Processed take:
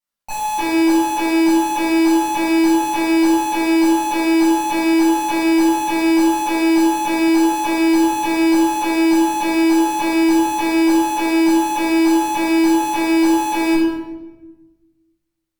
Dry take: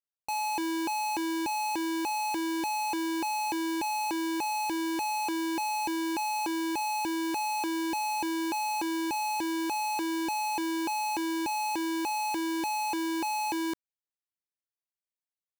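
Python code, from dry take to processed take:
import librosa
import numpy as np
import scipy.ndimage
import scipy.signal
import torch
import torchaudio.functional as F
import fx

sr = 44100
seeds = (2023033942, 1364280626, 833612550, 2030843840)

y = fx.doubler(x, sr, ms=18.0, db=-8.0)
y = fx.cheby_harmonics(y, sr, harmonics=(2,), levels_db=(-15,), full_scale_db=-27.5)
y = fx.room_shoebox(y, sr, seeds[0], volume_m3=660.0, walls='mixed', distance_m=7.7)
y = y * librosa.db_to_amplitude(-2.0)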